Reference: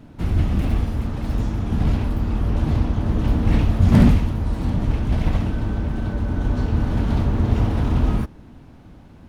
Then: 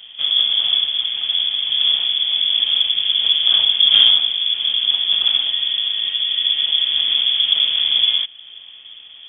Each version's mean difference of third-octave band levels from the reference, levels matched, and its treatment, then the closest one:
18.5 dB: in parallel at −3 dB: downward compressor, threshold −32 dBFS, peak gain reduction 22 dB
on the sum: voice inversion scrambler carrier 3,400 Hz
level −1 dB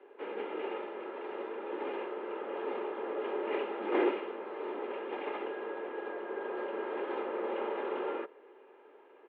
13.5 dB: comb filter 2.6 ms, depth 45%
single-sideband voice off tune +120 Hz 240–2,800 Hz
level −7 dB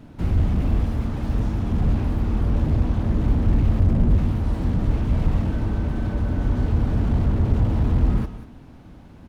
2.0 dB: on a send: single-tap delay 194 ms −16.5 dB
on the sum: slew-rate limiting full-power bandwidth 20 Hz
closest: third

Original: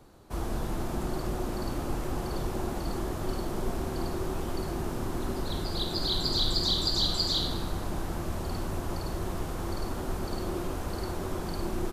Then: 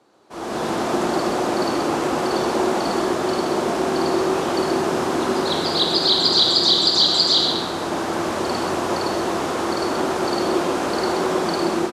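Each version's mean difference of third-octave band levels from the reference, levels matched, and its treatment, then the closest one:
5.5 dB: automatic gain control gain up to 16 dB
band-pass filter 300–7,200 Hz
single-tap delay 129 ms −7 dB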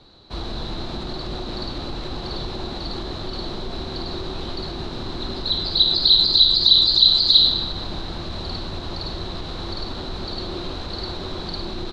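10.5 dB: brickwall limiter −23 dBFS, peak gain reduction 9.5 dB
low-pass with resonance 4,000 Hz, resonance Q 13
level +2.5 dB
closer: first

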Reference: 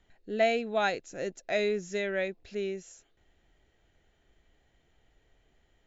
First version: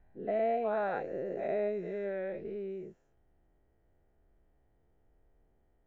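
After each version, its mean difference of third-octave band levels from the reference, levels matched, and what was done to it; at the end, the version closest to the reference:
8.0 dB: every bin's largest magnitude spread in time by 240 ms
low-pass filter 1,000 Hz 12 dB per octave
level −8 dB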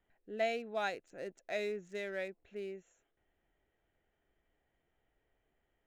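2.5 dB: adaptive Wiener filter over 9 samples
low-shelf EQ 200 Hz −7.5 dB
level −7.5 dB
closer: second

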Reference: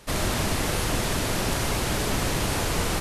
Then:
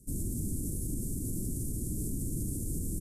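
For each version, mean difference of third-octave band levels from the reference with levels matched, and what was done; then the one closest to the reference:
18.0 dB: elliptic band-stop filter 300–8,300 Hz, stop band 60 dB
brickwall limiter −23 dBFS, peak gain reduction 7 dB
downsampling to 32,000 Hz
level −2.5 dB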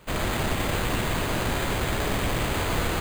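3.0 dB: echo with a time of its own for lows and highs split 340 Hz, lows 346 ms, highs 117 ms, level −7 dB
bad sample-rate conversion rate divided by 8×, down none, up hold
level −1.5 dB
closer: second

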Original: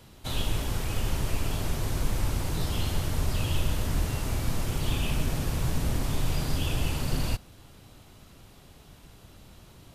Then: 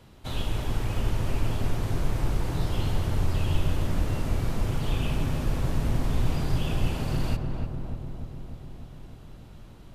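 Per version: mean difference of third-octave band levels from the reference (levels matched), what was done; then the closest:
5.0 dB: high-shelf EQ 4,000 Hz −9 dB
feedback echo with a low-pass in the loop 299 ms, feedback 71%, low-pass 1,300 Hz, level −4 dB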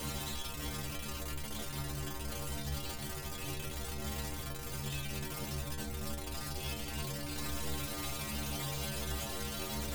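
9.0 dB: sign of each sample alone
stiff-string resonator 69 Hz, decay 0.7 s, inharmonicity 0.008
level +1 dB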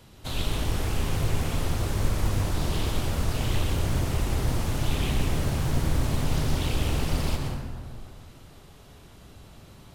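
2.5 dB: dense smooth reverb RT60 2 s, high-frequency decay 0.4×, pre-delay 100 ms, DRR 1 dB
highs frequency-modulated by the lows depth 0.9 ms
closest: third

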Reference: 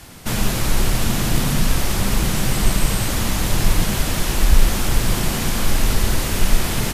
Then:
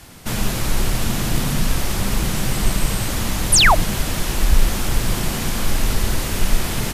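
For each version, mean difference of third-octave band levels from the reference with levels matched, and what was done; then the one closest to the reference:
2.0 dB: sound drawn into the spectrogram fall, 0:03.52–0:03.75, 560–12,000 Hz −11 dBFS
level −1.5 dB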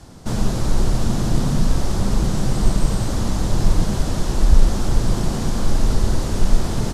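5.5 dB: low-pass filter 5,900 Hz 12 dB per octave
parametric band 2,400 Hz −14 dB 1.6 octaves
level +1 dB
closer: first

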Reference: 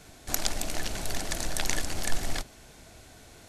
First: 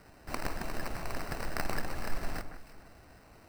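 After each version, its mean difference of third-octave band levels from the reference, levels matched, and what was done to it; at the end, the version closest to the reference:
5.5 dB: decimation without filtering 13×
on a send: delay that swaps between a low-pass and a high-pass 156 ms, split 2,000 Hz, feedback 51%, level −9 dB
on the sum: level −5.5 dB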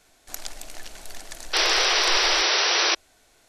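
17.5 dB: parametric band 110 Hz −13 dB 2.8 octaves
sound drawn into the spectrogram noise, 0:01.53–0:02.95, 320–6,000 Hz −15 dBFS
level −6 dB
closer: first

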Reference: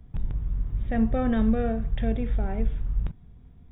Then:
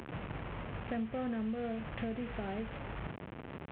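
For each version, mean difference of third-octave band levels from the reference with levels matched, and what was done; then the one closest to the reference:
9.5 dB: linear delta modulator 16 kbit/s, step −32.5 dBFS
high-pass filter 140 Hz 12 dB per octave
downward compressor 6 to 1, threshold −33 dBFS, peak gain reduction 12.5 dB
level −1.5 dB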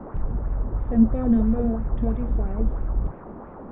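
6.0 dB: noise in a band 160–1,300 Hz −38 dBFS
tilt shelving filter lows +10 dB, about 870 Hz
auto-filter bell 3 Hz 210–2,600 Hz +8 dB
level −8 dB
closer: second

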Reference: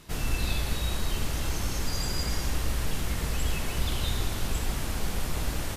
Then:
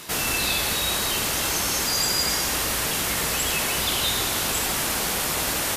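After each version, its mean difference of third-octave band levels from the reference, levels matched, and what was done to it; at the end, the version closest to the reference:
4.5 dB: high-pass filter 550 Hz 6 dB per octave
high-shelf EQ 8,100 Hz +5.5 dB
in parallel at +2.5 dB: brickwall limiter −33 dBFS, peak gain reduction 11.5 dB
on the sum: level +7 dB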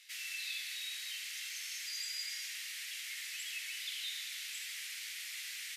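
22.0 dB: elliptic high-pass filter 2,000 Hz, stop band 80 dB
spectral tilt −2.5 dB per octave
in parallel at −1.5 dB: brickwall limiter −38.5 dBFS, peak gain reduction 8.5 dB
on the sum: level −2 dB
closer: first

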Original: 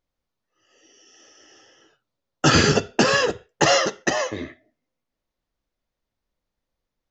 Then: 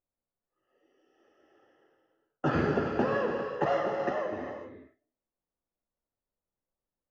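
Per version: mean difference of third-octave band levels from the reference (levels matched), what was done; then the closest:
7.5 dB: low-pass filter 1,200 Hz 12 dB per octave
low-shelf EQ 130 Hz −7 dB
reverb whose tail is shaped and stops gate 440 ms flat, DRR 2 dB
level −8.5 dB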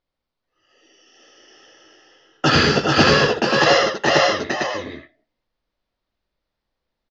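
5.5 dB: Chebyshev low-pass filter 4,700 Hz, order 3
low-shelf EQ 360 Hz −4.5 dB
multi-tap delay 82/427/449/533/547 ms −4.5/−3.5/−8/−4/−11.5 dB
level +2 dB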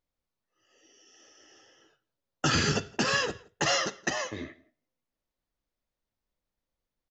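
2.5 dB: dynamic equaliser 520 Hz, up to −6 dB, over −31 dBFS, Q 0.82
brickwall limiter −9.5 dBFS, peak gain reduction 5 dB
slap from a distant wall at 29 metres, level −25 dB
level −5.5 dB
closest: third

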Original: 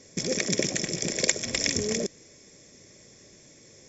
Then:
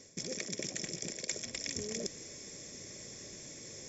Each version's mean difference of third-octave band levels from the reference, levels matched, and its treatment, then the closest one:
7.5 dB: high-shelf EQ 5,700 Hz +5.5 dB
reversed playback
downward compressor 4 to 1, threshold −42 dBFS, peak gain reduction 23 dB
reversed playback
level +3 dB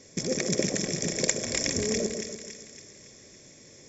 3.0 dB: dynamic equaliser 3,100 Hz, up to −6 dB, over −40 dBFS, Q 0.78
on a send: echo with a time of its own for lows and highs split 1,200 Hz, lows 146 ms, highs 280 ms, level −6.5 dB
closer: second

